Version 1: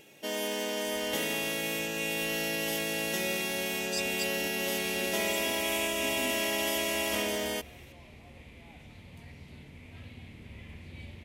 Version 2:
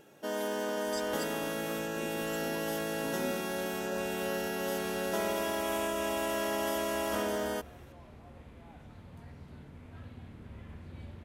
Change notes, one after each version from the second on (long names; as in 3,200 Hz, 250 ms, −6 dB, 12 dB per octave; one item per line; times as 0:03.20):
speech: entry −3.00 s
master: add high shelf with overshoot 1,800 Hz −6.5 dB, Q 3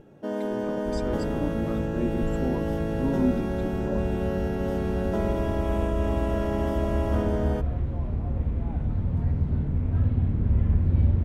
speech +8.0 dB
second sound +10.0 dB
master: add spectral tilt −4.5 dB per octave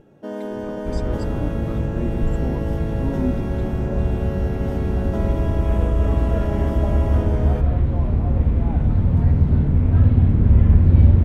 second sound +9.0 dB